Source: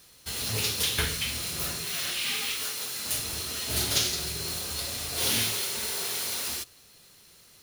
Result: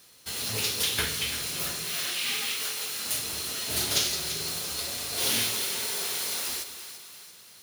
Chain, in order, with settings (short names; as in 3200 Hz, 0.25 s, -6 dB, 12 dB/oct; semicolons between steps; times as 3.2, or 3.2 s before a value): HPF 160 Hz 6 dB/oct; split-band echo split 730 Hz, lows 0.208 s, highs 0.339 s, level -11 dB